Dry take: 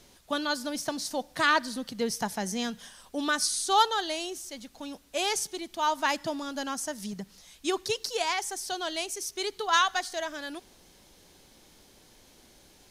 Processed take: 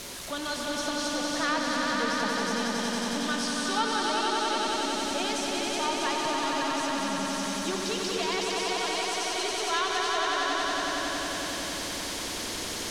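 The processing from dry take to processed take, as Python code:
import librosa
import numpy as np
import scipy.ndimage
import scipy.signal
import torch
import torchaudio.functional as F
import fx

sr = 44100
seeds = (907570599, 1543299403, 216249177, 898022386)

p1 = x + 0.5 * 10.0 ** (-25.0 / 20.0) * np.sign(x)
p2 = fx.low_shelf(p1, sr, hz=170.0, db=-8.5)
p3 = fx.notch(p2, sr, hz=790.0, q=12.0)
p4 = p3 + fx.echo_swell(p3, sr, ms=92, loudest=5, wet_db=-4, dry=0)
p5 = fx.env_lowpass_down(p4, sr, base_hz=940.0, full_db=-7.0)
y = p5 * 10.0 ** (-8.0 / 20.0)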